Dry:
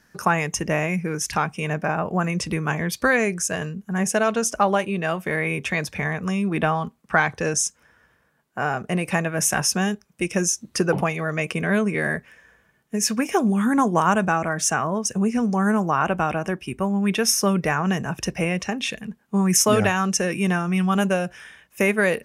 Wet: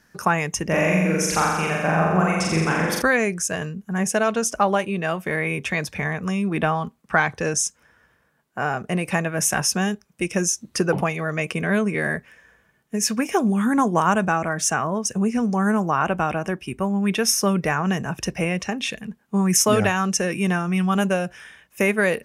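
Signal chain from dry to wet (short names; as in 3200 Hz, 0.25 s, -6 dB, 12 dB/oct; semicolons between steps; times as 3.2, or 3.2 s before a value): 0.67–3.02 flutter echo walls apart 7.4 m, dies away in 1.3 s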